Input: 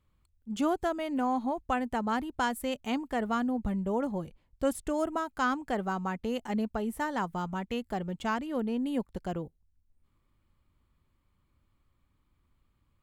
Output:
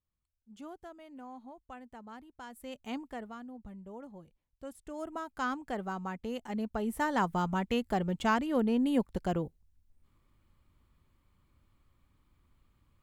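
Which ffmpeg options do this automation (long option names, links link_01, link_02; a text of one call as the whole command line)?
ffmpeg -i in.wav -af "volume=12.5dB,afade=type=in:start_time=2.46:duration=0.51:silence=0.266073,afade=type=out:start_time=2.97:duration=0.37:silence=0.334965,afade=type=in:start_time=4.78:duration=0.57:silence=0.281838,afade=type=in:start_time=6.56:duration=0.68:silence=0.398107" out.wav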